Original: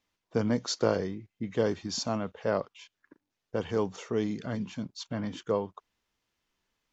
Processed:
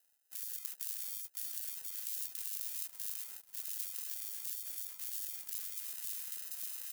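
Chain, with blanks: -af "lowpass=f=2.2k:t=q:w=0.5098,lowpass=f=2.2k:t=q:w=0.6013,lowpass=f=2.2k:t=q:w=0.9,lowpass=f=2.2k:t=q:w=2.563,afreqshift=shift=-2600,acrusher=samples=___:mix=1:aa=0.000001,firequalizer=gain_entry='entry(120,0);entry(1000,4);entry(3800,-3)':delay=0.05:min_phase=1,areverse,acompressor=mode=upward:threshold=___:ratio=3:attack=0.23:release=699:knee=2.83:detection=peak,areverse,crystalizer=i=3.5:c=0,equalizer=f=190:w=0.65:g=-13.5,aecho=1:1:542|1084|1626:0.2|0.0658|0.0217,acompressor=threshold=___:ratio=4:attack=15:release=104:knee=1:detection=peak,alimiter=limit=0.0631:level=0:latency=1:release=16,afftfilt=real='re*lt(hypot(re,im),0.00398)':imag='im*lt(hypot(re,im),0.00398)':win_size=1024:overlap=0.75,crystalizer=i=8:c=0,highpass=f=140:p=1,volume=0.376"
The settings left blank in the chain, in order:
39, 0.0398, 0.00355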